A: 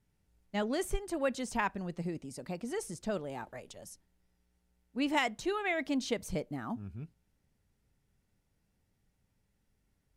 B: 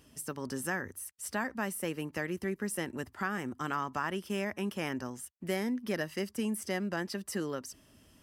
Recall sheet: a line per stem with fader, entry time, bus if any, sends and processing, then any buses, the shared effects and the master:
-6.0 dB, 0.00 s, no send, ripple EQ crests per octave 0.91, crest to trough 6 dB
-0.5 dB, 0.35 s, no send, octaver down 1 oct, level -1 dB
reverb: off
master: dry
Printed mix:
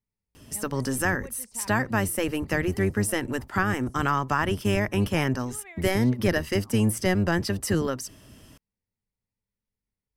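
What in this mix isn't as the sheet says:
stem A -6.0 dB -> -14.5 dB; stem B -0.5 dB -> +9.0 dB

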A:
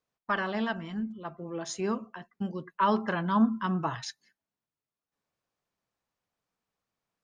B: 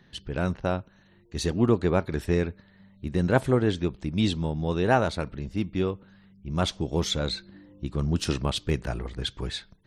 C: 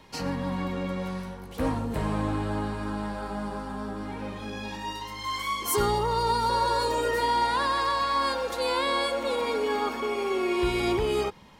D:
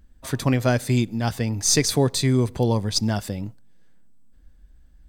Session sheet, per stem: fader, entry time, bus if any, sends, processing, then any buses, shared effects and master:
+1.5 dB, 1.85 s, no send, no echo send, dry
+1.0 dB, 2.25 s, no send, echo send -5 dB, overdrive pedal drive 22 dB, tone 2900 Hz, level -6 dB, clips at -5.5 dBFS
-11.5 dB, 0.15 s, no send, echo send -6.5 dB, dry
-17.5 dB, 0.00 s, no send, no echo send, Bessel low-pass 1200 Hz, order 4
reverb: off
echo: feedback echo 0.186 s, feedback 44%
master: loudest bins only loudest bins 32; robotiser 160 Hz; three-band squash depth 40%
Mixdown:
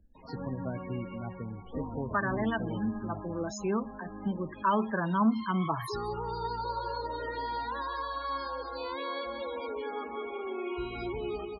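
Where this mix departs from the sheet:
stem B: muted; master: missing robotiser 160 Hz

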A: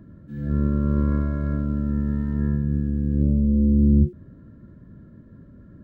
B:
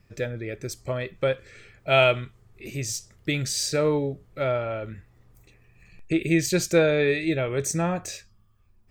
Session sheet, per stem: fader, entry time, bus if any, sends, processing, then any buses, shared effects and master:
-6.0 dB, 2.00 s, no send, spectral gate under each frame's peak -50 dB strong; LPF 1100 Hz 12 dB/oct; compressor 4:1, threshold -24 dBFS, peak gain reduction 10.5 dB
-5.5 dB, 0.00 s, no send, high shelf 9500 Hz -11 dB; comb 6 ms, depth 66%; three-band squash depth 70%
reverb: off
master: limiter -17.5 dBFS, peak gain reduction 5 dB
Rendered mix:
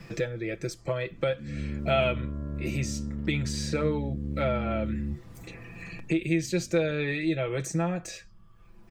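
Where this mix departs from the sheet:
stem A: entry 2.00 s -> 1.10 s; master: missing limiter -17.5 dBFS, peak gain reduction 5 dB

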